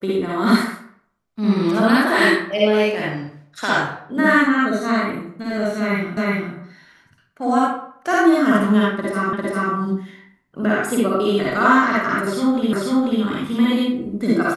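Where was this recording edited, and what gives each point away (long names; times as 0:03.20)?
0:06.17: the same again, the last 0.37 s
0:09.33: the same again, the last 0.4 s
0:12.73: the same again, the last 0.49 s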